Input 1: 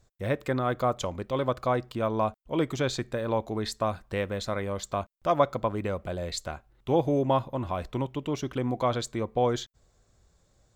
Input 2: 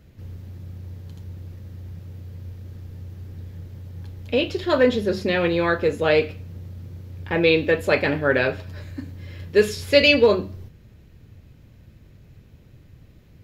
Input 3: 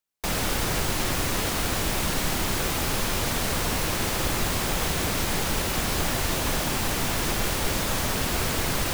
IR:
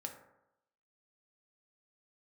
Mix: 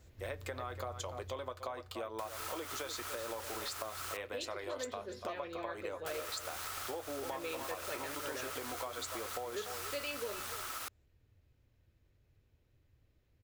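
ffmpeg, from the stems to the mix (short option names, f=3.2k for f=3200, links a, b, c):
-filter_complex "[0:a]highpass=370,flanger=delay=7.9:depth=1.3:regen=-54:speed=0.85:shape=triangular,volume=1.5dB,asplit=2[a][b];[b]volume=-16dB[c];[1:a]volume=-7dB,afade=t=out:st=1.04:d=0.6:silence=0.251189,asplit=2[d][e];[e]volume=-16dB[f];[2:a]aeval=exprs='val(0)*sin(2*PI*1300*n/s)':c=same,adelay=1950,volume=-13dB,asplit=3[g][h][i];[g]atrim=end=4.17,asetpts=PTS-STARTPTS,afade=t=out:st=4.166:d=0.004:c=hsin[j];[h]atrim=start=4.17:end=6.06,asetpts=PTS-STARTPTS,volume=0[k];[i]atrim=start=6.06,asetpts=PTS-STARTPTS,afade=t=in:d=0.004:c=hsin[l];[j][k][l]concat=n=3:v=0:a=1[m];[a][m]amix=inputs=2:normalize=0,highshelf=f=4.8k:g=6.5,acompressor=threshold=-33dB:ratio=6,volume=0dB[n];[c][f]amix=inputs=2:normalize=0,aecho=0:1:290:1[o];[d][n][o]amix=inputs=3:normalize=0,equalizer=f=180:w=1.6:g=-12,acompressor=threshold=-38dB:ratio=3"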